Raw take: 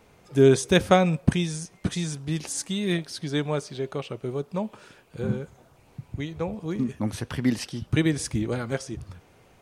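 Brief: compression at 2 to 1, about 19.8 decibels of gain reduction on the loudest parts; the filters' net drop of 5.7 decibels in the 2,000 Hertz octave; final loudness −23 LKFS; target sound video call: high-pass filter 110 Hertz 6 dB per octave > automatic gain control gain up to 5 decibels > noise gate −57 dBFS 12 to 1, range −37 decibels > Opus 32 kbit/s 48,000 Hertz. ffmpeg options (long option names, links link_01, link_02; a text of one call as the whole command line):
ffmpeg -i in.wav -af "equalizer=frequency=2000:width_type=o:gain=-7.5,acompressor=threshold=-50dB:ratio=2,highpass=frequency=110:poles=1,dynaudnorm=maxgain=5dB,agate=range=-37dB:threshold=-57dB:ratio=12,volume=21dB" -ar 48000 -c:a libopus -b:a 32k out.opus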